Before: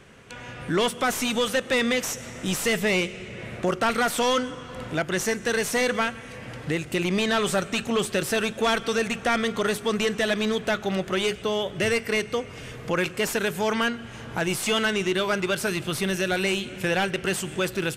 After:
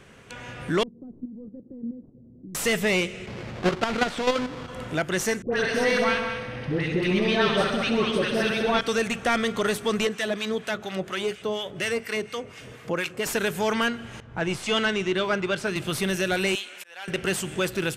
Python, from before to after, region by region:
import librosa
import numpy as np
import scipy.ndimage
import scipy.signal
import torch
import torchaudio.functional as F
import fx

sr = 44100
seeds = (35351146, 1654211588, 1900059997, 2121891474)

y = fx.chain(x, sr, fx.ladder_lowpass(hz=350.0, resonance_pct=40),
    fx.level_steps(step_db=10), at=(0.83, 2.55))
y = fx.chain(y, sr, fx.halfwave_hold(),
    fx.lowpass(hz=4600.0, slope=12),
    fx.level_steps(step_db=9), at=(3.26, 4.68))
y = fx.chain(y, sr, fx.savgol(points=15),
    fx.dispersion(late='highs', ms=108.0, hz=1000.0),
    fx.echo_heads(ms=66, heads='all three', feedback_pct=42, wet_db=-9.5), at=(5.42, 8.81))
y = fx.chain(y, sr, fx.highpass(hz=120.0, slope=6),
    fx.harmonic_tremolo(hz=4.2, depth_pct=70, crossover_hz=1000.0), at=(10.07, 13.26))
y = fx.chain(y, sr, fx.air_absorb(metres=67.0),
    fx.band_widen(depth_pct=70), at=(14.2, 15.76))
y = fx.chain(y, sr, fx.highpass(hz=880.0, slope=12),
    fx.auto_swell(attack_ms=671.0), at=(16.55, 17.08))